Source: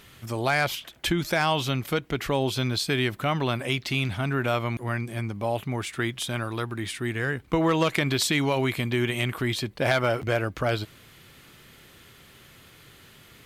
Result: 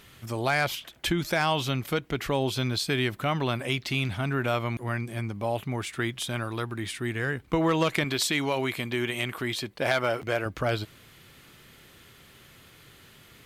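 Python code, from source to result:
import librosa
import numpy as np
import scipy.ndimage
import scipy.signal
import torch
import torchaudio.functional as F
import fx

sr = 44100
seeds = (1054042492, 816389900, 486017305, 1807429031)

y = fx.low_shelf(x, sr, hz=160.0, db=-10.0, at=(8.04, 10.46))
y = F.gain(torch.from_numpy(y), -1.5).numpy()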